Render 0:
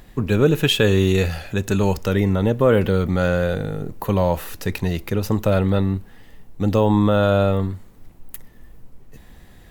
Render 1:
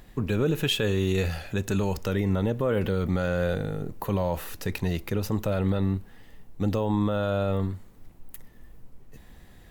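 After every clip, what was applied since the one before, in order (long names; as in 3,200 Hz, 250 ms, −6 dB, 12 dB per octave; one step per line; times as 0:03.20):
brickwall limiter −11 dBFS, peak gain reduction 6.5 dB
level −4.5 dB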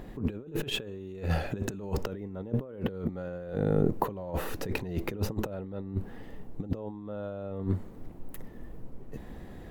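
parametric band 360 Hz +8 dB 2.6 octaves
compressor whose output falls as the input rises −27 dBFS, ratio −0.5
high-shelf EQ 2,500 Hz −8.5 dB
level −3.5 dB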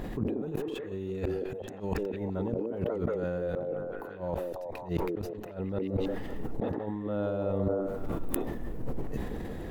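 gate with flip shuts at −25 dBFS, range −27 dB
echo through a band-pass that steps 181 ms, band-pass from 370 Hz, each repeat 0.7 octaves, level −1 dB
level that may fall only so fast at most 29 dB per second
level +5 dB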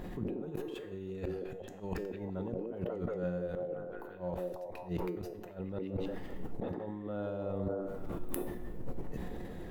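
tuned comb filter 180 Hz, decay 0.57 s, harmonics all, mix 70%
level +3 dB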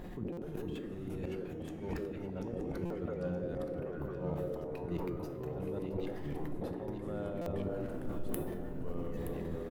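delay with pitch and tempo change per echo 419 ms, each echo −3 semitones, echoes 2
single-tap delay 922 ms −11 dB
buffer that repeats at 0:00.32/0:02.85/0:07.41, samples 256, times 8
level −2.5 dB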